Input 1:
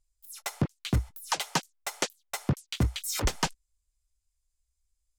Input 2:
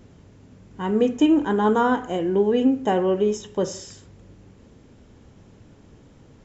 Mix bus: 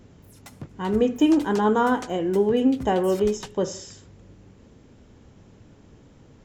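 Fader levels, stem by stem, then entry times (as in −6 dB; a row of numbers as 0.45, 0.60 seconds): −11.5, −1.0 decibels; 0.00, 0.00 seconds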